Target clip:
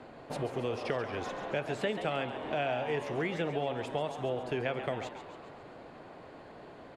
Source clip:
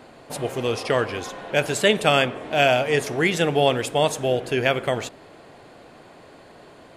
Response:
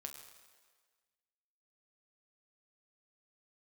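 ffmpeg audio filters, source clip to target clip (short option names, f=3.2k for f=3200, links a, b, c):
-filter_complex "[0:a]aemphasis=mode=reproduction:type=75fm,acrossover=split=320|1200|4000[a][b][c][d];[d]alimiter=level_in=12.5dB:limit=-24dB:level=0:latency=1,volume=-12.5dB[e];[a][b][c][e]amix=inputs=4:normalize=0,acompressor=threshold=-28dB:ratio=4,asplit=7[f][g][h][i][j][k][l];[g]adelay=137,afreqshift=120,volume=-10.5dB[m];[h]adelay=274,afreqshift=240,volume=-15.5dB[n];[i]adelay=411,afreqshift=360,volume=-20.6dB[o];[j]adelay=548,afreqshift=480,volume=-25.6dB[p];[k]adelay=685,afreqshift=600,volume=-30.6dB[q];[l]adelay=822,afreqshift=720,volume=-35.7dB[r];[f][m][n][o][p][q][r]amix=inputs=7:normalize=0,volume=-3.5dB"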